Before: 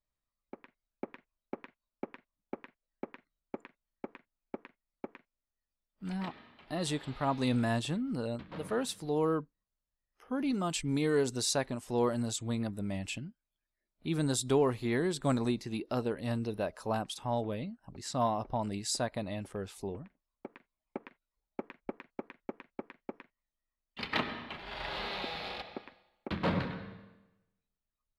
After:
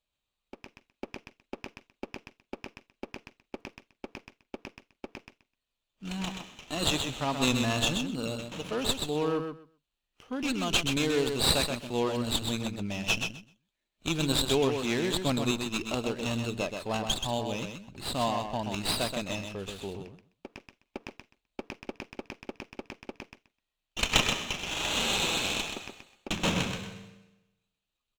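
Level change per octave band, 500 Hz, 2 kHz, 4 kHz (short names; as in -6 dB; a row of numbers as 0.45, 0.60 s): +1.5, +7.5, +11.5 dB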